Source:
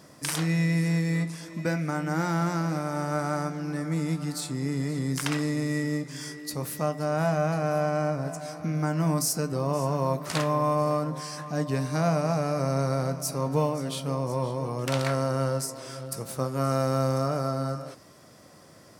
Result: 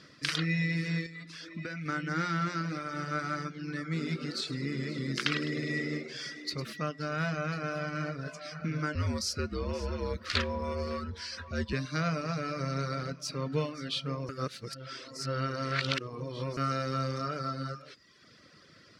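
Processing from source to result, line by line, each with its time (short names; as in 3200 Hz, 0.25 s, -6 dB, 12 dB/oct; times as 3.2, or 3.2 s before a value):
1.06–1.86 compressor 12:1, threshold -29 dBFS
3.83–6.73 frequency-shifting echo 0.103 s, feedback 53%, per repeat +84 Hz, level -8.5 dB
7.41–8.32 echo throw 0.54 s, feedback 65%, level -11.5 dB
8.95–11.73 frequency shift -67 Hz
14.29–16.57 reverse
whole clip: reverb removal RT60 0.88 s; EQ curve 470 Hz 0 dB, 850 Hz -13 dB, 1300 Hz +6 dB, 4400 Hz +9 dB, 8200 Hz -11 dB, 13000 Hz -19 dB; gain -4 dB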